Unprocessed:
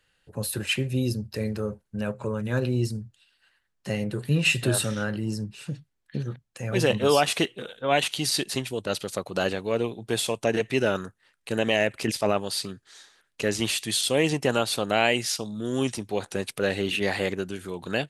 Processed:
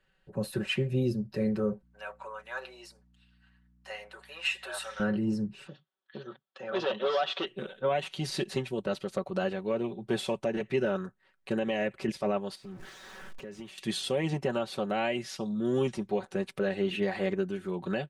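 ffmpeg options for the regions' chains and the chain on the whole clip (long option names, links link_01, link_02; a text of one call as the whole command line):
ffmpeg -i in.wav -filter_complex "[0:a]asettb=1/sr,asplit=3[link_01][link_02][link_03];[link_01]atrim=end=1.824[link_04];[link_02]atrim=start=1.82:end=5,asetpts=PTS-STARTPTS,afade=type=in:duration=0.004:curve=qsin,afade=type=out:start_time=3.176:duration=0.004:curve=qsin,highpass=frequency=760:width=0.5412,highpass=frequency=760:width=1.3066,aeval=exprs='val(0)+0.000794*(sin(2*PI*60*n/s)+sin(2*PI*2*60*n/s)/2+sin(2*PI*3*60*n/s)/3+sin(2*PI*4*60*n/s)/4+sin(2*PI*5*60*n/s)/5)':channel_layout=same[link_05];[link_03]atrim=start=4.996[link_06];[link_04][link_05]acrossfade=duration=0.004:curve1=hsin:curve2=qsin[link_07];[link_07][link_06]acrossfade=duration=0.004:curve1=qsin:curve2=hsin,asettb=1/sr,asplit=3[link_08][link_09][link_10];[link_08]atrim=end=5.674[link_11];[link_09]atrim=start=5.67:end=7.47,asetpts=PTS-STARTPTS,afade=type=in:duration=0.004:curve=qsin,afade=type=out:start_time=1.796:duration=0.004:curve=qsin,volume=20.5dB,asoftclip=hard,volume=-20.5dB,highpass=470,equalizer=frequency=1300:width_type=q:width=4:gain=4,equalizer=frequency=2200:width_type=q:width=4:gain=-7,equalizer=frequency=3400:width_type=q:width=4:gain=10,lowpass=frequency=5200:width=0.5412,lowpass=frequency=5200:width=1.3066[link_12];[link_10]atrim=start=7.466[link_13];[link_11][link_12]acrossfade=duration=0.004:curve1=hsin:curve2=qsin[link_14];[link_14][link_13]acrossfade=duration=0.004:curve1=qsin:curve2=hsin,asettb=1/sr,asplit=3[link_15][link_16][link_17];[link_15]atrim=end=12.554[link_18];[link_16]atrim=start=12.55:end=13.78,asetpts=PTS-STARTPTS,afade=type=in:duration=0.004:curve=qsin,afade=type=out:start_time=1.226:duration=0.004:curve=qsin,aeval=exprs='val(0)+0.5*0.0141*sgn(val(0))':channel_layout=same,acompressor=threshold=-40dB:ratio=6:attack=3.2:release=140:knee=1:detection=peak,equalizer=frequency=4200:width=4.5:gain=-3.5[link_19];[link_17]atrim=start=13.776[link_20];[link_18][link_19]acrossfade=duration=0.004:curve1=hsin:curve2=qsin[link_21];[link_21][link_20]acrossfade=duration=0.004:curve1=qsin:curve2=hsin,lowpass=frequency=1400:poles=1,aecho=1:1:5.3:0.71,alimiter=limit=-17.5dB:level=0:latency=1:release=408,volume=-1dB" out.wav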